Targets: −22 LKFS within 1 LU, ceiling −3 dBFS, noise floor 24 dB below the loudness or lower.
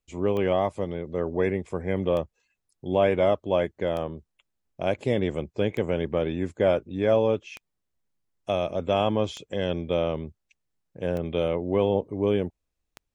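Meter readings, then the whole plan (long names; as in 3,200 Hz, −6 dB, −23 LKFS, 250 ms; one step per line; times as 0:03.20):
number of clicks 8; integrated loudness −26.5 LKFS; sample peak −10.5 dBFS; target loudness −22.0 LKFS
→ click removal
level +4.5 dB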